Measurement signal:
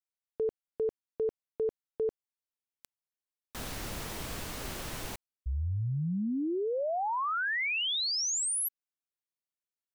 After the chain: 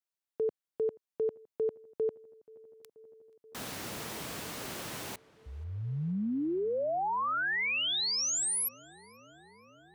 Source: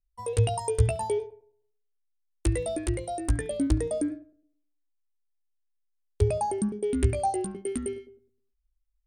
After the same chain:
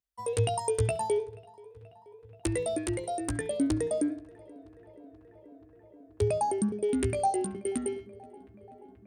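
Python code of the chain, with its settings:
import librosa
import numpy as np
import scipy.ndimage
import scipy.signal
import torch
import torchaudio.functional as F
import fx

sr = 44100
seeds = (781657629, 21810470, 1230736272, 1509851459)

y = scipy.signal.sosfilt(scipy.signal.butter(2, 130.0, 'highpass', fs=sr, output='sos'), x)
y = fx.echo_filtered(y, sr, ms=481, feedback_pct=84, hz=3600.0, wet_db=-24)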